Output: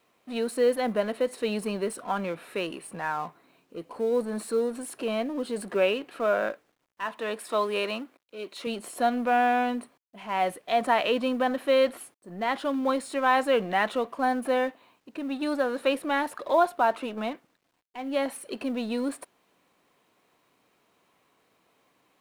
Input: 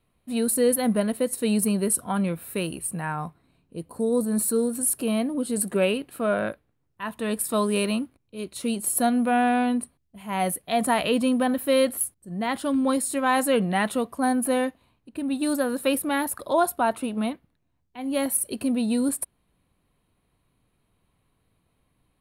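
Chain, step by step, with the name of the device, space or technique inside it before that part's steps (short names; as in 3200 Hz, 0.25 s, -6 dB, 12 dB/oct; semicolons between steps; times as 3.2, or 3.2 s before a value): phone line with mismatched companding (BPF 380–3500 Hz; G.711 law mismatch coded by mu); 7.06–8.67 HPF 270 Hz 6 dB/oct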